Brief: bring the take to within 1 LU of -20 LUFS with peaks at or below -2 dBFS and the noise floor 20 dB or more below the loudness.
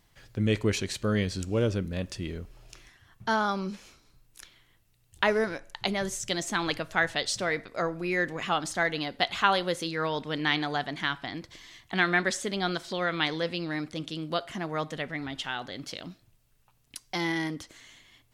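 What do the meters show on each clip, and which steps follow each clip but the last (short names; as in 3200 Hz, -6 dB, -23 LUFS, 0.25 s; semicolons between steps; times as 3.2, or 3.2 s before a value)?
loudness -29.5 LUFS; peak -7.5 dBFS; loudness target -20.0 LUFS
-> gain +9.5 dB; limiter -2 dBFS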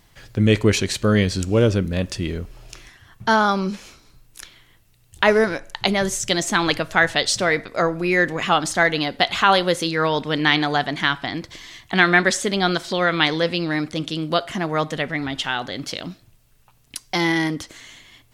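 loudness -20.5 LUFS; peak -2.0 dBFS; noise floor -56 dBFS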